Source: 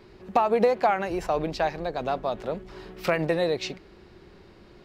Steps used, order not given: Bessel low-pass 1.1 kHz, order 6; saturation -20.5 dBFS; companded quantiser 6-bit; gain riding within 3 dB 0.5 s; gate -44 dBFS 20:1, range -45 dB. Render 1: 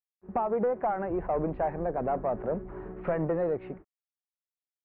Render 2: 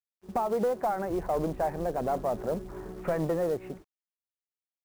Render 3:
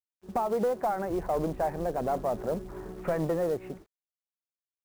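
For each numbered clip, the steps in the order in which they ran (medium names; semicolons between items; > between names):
gain riding > saturation > gate > companded quantiser > Bessel low-pass; gain riding > saturation > gate > Bessel low-pass > companded quantiser; gate > gain riding > saturation > Bessel low-pass > companded quantiser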